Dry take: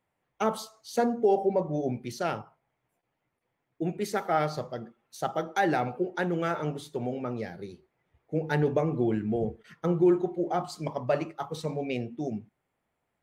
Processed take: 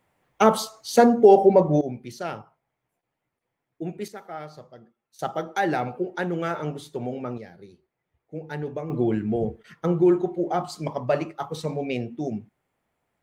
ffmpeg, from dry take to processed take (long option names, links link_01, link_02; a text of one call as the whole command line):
ffmpeg -i in.wav -af "asetnsamples=nb_out_samples=441:pad=0,asendcmd='1.81 volume volume -1.5dB;4.08 volume volume -10.5dB;5.19 volume volume 1.5dB;7.38 volume volume -6dB;8.9 volume volume 3.5dB',volume=10dB" out.wav